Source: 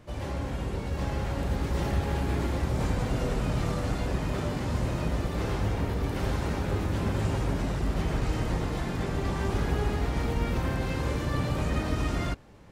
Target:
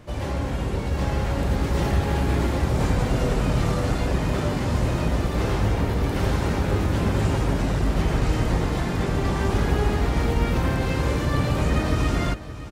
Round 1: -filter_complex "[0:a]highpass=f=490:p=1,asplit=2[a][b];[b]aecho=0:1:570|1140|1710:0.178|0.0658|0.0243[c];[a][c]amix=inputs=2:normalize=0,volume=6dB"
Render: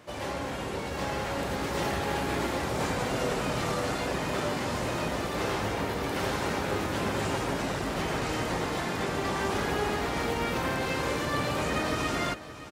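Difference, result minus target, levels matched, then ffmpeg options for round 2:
500 Hz band +3.0 dB
-filter_complex "[0:a]asplit=2[a][b];[b]aecho=0:1:570|1140|1710:0.178|0.0658|0.0243[c];[a][c]amix=inputs=2:normalize=0,volume=6dB"

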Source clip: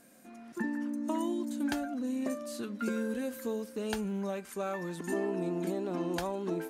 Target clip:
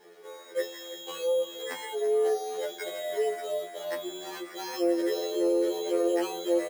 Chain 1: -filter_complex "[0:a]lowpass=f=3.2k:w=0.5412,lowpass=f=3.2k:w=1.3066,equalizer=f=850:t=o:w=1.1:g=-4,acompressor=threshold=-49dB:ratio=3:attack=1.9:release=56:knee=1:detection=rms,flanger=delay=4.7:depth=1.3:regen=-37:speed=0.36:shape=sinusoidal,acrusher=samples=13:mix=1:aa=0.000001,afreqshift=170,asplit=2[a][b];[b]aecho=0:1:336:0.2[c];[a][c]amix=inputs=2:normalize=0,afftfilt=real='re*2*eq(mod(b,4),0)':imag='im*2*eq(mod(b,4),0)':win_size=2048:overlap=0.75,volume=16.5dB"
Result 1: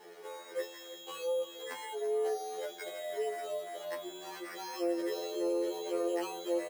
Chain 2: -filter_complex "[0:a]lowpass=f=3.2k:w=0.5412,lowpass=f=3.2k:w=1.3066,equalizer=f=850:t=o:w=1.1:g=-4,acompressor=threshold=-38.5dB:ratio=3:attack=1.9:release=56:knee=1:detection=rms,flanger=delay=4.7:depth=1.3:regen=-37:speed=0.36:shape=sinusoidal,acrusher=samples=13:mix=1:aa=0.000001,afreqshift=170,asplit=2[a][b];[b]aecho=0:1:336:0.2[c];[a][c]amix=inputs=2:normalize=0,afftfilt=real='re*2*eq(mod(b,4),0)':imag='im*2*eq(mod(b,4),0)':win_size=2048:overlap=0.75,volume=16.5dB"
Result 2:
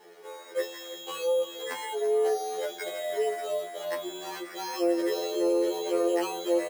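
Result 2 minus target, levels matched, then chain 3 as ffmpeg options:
1000 Hz band +2.5 dB
-filter_complex "[0:a]lowpass=f=3.2k:w=0.5412,lowpass=f=3.2k:w=1.3066,equalizer=f=850:t=o:w=1.1:g=-11.5,acompressor=threshold=-38.5dB:ratio=3:attack=1.9:release=56:knee=1:detection=rms,flanger=delay=4.7:depth=1.3:regen=-37:speed=0.36:shape=sinusoidal,acrusher=samples=13:mix=1:aa=0.000001,afreqshift=170,asplit=2[a][b];[b]aecho=0:1:336:0.2[c];[a][c]amix=inputs=2:normalize=0,afftfilt=real='re*2*eq(mod(b,4),0)':imag='im*2*eq(mod(b,4),0)':win_size=2048:overlap=0.75,volume=16.5dB"

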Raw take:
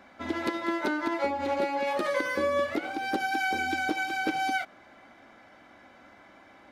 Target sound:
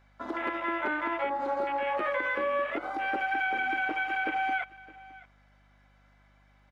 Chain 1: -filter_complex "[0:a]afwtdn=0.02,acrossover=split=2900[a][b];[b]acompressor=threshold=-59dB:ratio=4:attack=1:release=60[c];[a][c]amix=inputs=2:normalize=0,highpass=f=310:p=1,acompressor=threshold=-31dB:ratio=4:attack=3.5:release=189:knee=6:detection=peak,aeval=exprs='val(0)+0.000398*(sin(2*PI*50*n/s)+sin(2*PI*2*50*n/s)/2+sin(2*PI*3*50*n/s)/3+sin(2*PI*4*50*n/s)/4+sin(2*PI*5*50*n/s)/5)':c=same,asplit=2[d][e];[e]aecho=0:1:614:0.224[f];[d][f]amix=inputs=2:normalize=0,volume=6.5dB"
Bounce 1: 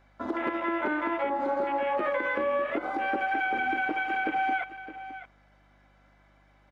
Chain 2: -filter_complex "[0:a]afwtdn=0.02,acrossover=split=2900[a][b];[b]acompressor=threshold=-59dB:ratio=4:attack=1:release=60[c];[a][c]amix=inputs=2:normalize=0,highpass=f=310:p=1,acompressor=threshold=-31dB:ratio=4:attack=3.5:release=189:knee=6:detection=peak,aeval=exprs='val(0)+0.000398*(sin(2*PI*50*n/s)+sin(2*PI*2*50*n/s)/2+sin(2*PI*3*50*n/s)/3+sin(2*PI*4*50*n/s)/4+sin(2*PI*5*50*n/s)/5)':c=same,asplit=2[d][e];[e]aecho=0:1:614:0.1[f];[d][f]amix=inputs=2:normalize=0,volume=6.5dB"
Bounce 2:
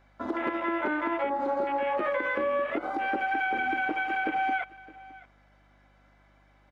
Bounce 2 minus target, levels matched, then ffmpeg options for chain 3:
250 Hz band +4.0 dB
-filter_complex "[0:a]afwtdn=0.02,acrossover=split=2900[a][b];[b]acompressor=threshold=-59dB:ratio=4:attack=1:release=60[c];[a][c]amix=inputs=2:normalize=0,highpass=f=1k:p=1,acompressor=threshold=-31dB:ratio=4:attack=3.5:release=189:knee=6:detection=peak,aeval=exprs='val(0)+0.000398*(sin(2*PI*50*n/s)+sin(2*PI*2*50*n/s)/2+sin(2*PI*3*50*n/s)/3+sin(2*PI*4*50*n/s)/4+sin(2*PI*5*50*n/s)/5)':c=same,asplit=2[d][e];[e]aecho=0:1:614:0.1[f];[d][f]amix=inputs=2:normalize=0,volume=6.5dB"

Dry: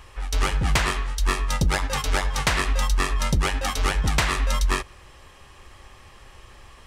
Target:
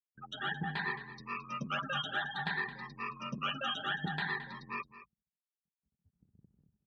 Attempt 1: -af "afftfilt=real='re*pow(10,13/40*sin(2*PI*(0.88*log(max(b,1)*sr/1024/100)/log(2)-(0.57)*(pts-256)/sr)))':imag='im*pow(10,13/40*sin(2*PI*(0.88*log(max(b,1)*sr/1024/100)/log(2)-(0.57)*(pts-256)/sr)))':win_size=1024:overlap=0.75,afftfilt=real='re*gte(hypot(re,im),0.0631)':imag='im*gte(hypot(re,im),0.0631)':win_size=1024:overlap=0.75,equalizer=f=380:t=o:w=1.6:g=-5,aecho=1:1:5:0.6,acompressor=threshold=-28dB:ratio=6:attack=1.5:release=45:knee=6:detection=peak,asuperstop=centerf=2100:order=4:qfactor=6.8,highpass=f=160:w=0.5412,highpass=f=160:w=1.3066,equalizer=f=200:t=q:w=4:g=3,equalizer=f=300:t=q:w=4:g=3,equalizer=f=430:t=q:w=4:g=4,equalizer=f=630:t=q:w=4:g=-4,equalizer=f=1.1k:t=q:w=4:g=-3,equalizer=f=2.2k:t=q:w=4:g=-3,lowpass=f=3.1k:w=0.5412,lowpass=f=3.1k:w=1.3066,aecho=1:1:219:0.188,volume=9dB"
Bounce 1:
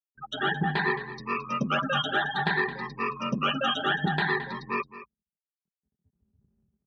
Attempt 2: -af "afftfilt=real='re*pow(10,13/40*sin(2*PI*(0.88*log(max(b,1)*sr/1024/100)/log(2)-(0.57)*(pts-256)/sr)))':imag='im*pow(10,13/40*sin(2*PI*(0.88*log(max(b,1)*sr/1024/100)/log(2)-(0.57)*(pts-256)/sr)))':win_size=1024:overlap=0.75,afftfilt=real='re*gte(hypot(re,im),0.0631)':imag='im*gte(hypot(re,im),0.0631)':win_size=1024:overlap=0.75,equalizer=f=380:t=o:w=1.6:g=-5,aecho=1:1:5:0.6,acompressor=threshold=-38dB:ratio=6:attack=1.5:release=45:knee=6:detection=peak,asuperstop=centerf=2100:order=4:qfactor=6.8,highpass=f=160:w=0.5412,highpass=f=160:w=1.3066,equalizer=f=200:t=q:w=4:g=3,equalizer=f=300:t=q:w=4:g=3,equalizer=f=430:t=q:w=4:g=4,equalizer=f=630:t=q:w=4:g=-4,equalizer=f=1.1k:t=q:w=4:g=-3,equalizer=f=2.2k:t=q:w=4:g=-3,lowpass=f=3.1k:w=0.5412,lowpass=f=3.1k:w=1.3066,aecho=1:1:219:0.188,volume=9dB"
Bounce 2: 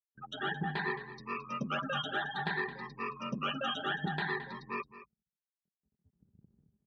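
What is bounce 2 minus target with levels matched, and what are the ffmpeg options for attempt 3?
500 Hz band +6.0 dB
-af "afftfilt=real='re*pow(10,13/40*sin(2*PI*(0.88*log(max(b,1)*sr/1024/100)/log(2)-(0.57)*(pts-256)/sr)))':imag='im*pow(10,13/40*sin(2*PI*(0.88*log(max(b,1)*sr/1024/100)/log(2)-(0.57)*(pts-256)/sr)))':win_size=1024:overlap=0.75,afftfilt=real='re*gte(hypot(re,im),0.0631)':imag='im*gte(hypot(re,im),0.0631)':win_size=1024:overlap=0.75,equalizer=f=380:t=o:w=1.6:g=-15.5,aecho=1:1:5:0.6,acompressor=threshold=-38dB:ratio=6:attack=1.5:release=45:knee=6:detection=peak,asuperstop=centerf=2100:order=4:qfactor=6.8,highpass=f=160:w=0.5412,highpass=f=160:w=1.3066,equalizer=f=200:t=q:w=4:g=3,equalizer=f=300:t=q:w=4:g=3,equalizer=f=430:t=q:w=4:g=4,equalizer=f=630:t=q:w=4:g=-4,equalizer=f=1.1k:t=q:w=4:g=-3,equalizer=f=2.2k:t=q:w=4:g=-3,lowpass=f=3.1k:w=0.5412,lowpass=f=3.1k:w=1.3066,aecho=1:1:219:0.188,volume=9dB"

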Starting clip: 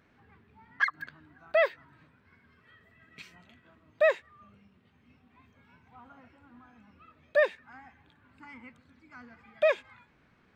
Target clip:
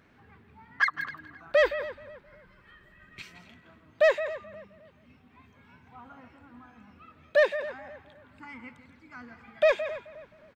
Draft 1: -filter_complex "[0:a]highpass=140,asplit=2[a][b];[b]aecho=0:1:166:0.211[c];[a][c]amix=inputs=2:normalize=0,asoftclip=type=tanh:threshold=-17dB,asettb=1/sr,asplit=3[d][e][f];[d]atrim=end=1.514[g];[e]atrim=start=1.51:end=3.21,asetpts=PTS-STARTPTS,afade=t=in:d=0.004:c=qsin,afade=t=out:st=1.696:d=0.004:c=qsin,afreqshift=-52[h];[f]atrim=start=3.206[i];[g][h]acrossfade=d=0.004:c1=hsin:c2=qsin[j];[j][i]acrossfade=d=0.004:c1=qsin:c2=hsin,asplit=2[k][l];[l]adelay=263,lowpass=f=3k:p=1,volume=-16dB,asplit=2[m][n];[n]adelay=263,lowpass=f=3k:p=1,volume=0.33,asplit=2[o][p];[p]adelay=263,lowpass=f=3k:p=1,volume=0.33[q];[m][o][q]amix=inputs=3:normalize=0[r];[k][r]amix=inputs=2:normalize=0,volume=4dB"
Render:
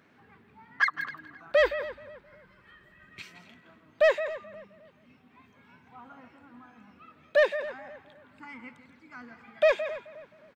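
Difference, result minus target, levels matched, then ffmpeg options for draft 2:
125 Hz band -3.0 dB
-filter_complex "[0:a]asplit=2[a][b];[b]aecho=0:1:166:0.211[c];[a][c]amix=inputs=2:normalize=0,asoftclip=type=tanh:threshold=-17dB,asettb=1/sr,asplit=3[d][e][f];[d]atrim=end=1.514[g];[e]atrim=start=1.51:end=3.21,asetpts=PTS-STARTPTS,afade=t=in:d=0.004:c=qsin,afade=t=out:st=1.696:d=0.004:c=qsin,afreqshift=-52[h];[f]atrim=start=3.206[i];[g][h]acrossfade=d=0.004:c1=hsin:c2=qsin[j];[j][i]acrossfade=d=0.004:c1=qsin:c2=hsin,asplit=2[k][l];[l]adelay=263,lowpass=f=3k:p=1,volume=-16dB,asplit=2[m][n];[n]adelay=263,lowpass=f=3k:p=1,volume=0.33,asplit=2[o][p];[p]adelay=263,lowpass=f=3k:p=1,volume=0.33[q];[m][o][q]amix=inputs=3:normalize=0[r];[k][r]amix=inputs=2:normalize=0,volume=4dB"

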